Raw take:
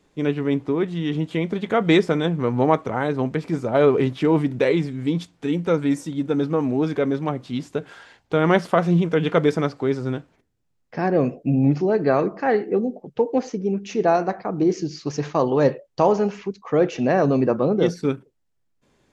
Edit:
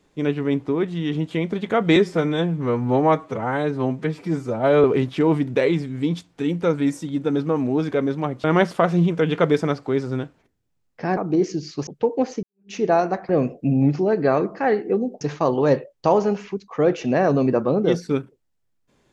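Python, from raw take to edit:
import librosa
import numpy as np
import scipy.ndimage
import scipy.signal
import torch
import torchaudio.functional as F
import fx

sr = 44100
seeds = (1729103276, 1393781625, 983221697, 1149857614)

y = fx.edit(x, sr, fx.stretch_span(start_s=1.96, length_s=1.92, factor=1.5),
    fx.cut(start_s=7.48, length_s=0.9),
    fx.swap(start_s=11.11, length_s=1.92, other_s=14.45, other_length_s=0.7),
    fx.fade_in_span(start_s=13.59, length_s=0.28, curve='exp'), tone=tone)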